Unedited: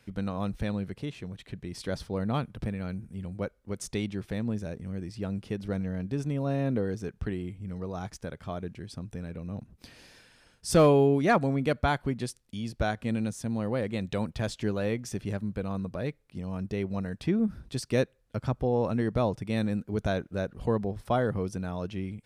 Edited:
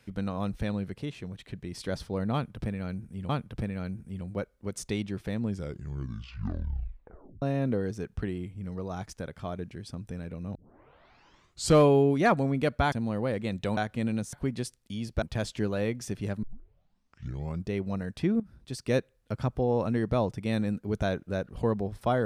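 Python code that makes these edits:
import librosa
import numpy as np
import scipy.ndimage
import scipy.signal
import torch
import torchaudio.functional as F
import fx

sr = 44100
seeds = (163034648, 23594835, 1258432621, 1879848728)

y = fx.edit(x, sr, fx.repeat(start_s=2.33, length_s=0.96, count=2),
    fx.tape_stop(start_s=4.46, length_s=2.0),
    fx.tape_start(start_s=9.59, length_s=1.26),
    fx.swap(start_s=11.96, length_s=0.89, other_s=13.41, other_length_s=0.85),
    fx.tape_start(start_s=15.47, length_s=1.26),
    fx.fade_in_from(start_s=17.44, length_s=0.59, floor_db=-17.0), tone=tone)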